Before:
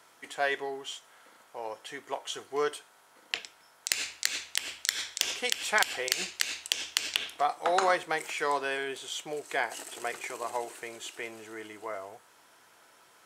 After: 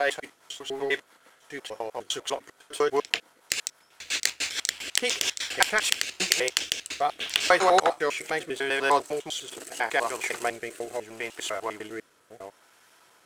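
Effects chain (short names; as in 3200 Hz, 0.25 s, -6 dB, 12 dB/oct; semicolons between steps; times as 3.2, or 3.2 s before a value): slices in reverse order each 0.1 s, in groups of 5; sample leveller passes 1; rotary speaker horn 6 Hz, later 0.75 Hz, at 5.42; gain +4.5 dB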